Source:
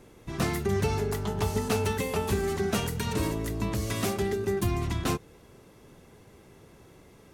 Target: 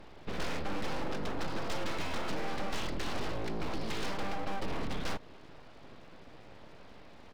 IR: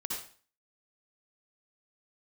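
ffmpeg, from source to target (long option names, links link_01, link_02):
-af "aresample=11025,asoftclip=type=tanh:threshold=-26dB,aresample=44100,acompressor=threshold=-35dB:ratio=2,aeval=exprs='abs(val(0))':channel_layout=same,volume=3.5dB"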